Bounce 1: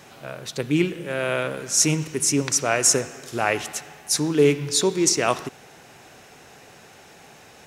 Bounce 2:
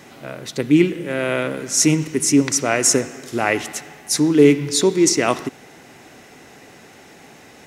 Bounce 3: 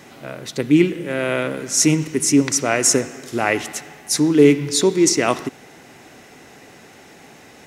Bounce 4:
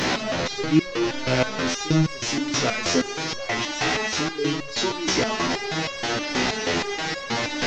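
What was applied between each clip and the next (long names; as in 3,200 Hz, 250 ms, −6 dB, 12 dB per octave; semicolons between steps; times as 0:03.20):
hollow resonant body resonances 270/2,000 Hz, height 8 dB, ringing for 20 ms; level +1.5 dB
no processing that can be heard
linear delta modulator 32 kbit/s, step −12.5 dBFS; feedback echo with a high-pass in the loop 145 ms, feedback 76%, level −15 dB; step-sequenced resonator 6.3 Hz 63–550 Hz; level +4 dB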